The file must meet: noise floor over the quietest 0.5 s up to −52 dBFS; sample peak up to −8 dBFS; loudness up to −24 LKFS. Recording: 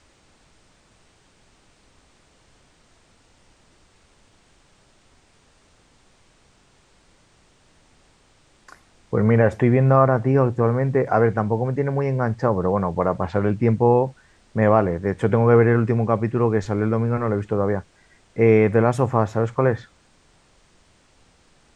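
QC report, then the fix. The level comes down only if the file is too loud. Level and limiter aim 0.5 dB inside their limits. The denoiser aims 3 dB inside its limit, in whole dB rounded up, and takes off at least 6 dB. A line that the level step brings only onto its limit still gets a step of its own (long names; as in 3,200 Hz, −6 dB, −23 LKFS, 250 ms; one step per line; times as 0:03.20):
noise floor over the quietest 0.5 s −58 dBFS: in spec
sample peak −3.0 dBFS: out of spec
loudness −20.0 LKFS: out of spec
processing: level −4.5 dB
brickwall limiter −8.5 dBFS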